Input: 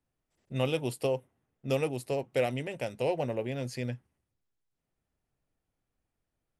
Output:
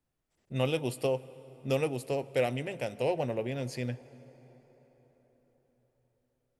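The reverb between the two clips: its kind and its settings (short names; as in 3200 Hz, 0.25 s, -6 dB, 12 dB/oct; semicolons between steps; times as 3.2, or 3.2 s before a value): plate-style reverb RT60 5 s, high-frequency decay 0.6×, DRR 17.5 dB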